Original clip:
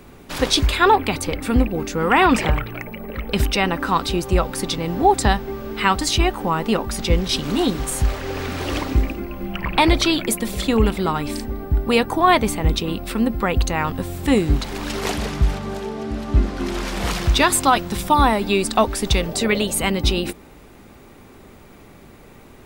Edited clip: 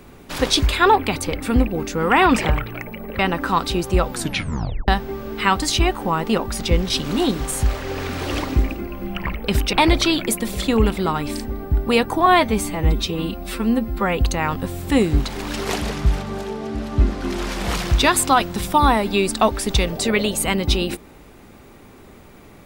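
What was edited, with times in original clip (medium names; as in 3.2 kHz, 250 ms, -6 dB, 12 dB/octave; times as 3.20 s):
3.19–3.58 s: move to 9.73 s
4.50 s: tape stop 0.77 s
12.26–13.54 s: stretch 1.5×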